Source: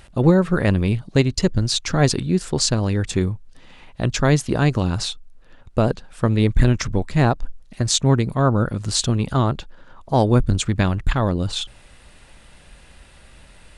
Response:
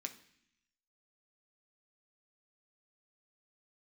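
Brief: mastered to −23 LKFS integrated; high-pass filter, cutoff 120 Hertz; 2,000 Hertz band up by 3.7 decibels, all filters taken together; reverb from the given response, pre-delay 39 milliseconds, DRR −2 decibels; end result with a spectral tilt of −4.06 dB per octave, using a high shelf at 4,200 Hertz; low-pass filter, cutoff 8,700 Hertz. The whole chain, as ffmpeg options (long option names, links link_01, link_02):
-filter_complex "[0:a]highpass=120,lowpass=8700,equalizer=frequency=2000:width_type=o:gain=3.5,highshelf=frequency=4200:gain=6,asplit=2[link_01][link_02];[1:a]atrim=start_sample=2205,adelay=39[link_03];[link_02][link_03]afir=irnorm=-1:irlink=0,volume=4.5dB[link_04];[link_01][link_04]amix=inputs=2:normalize=0,volume=-6.5dB"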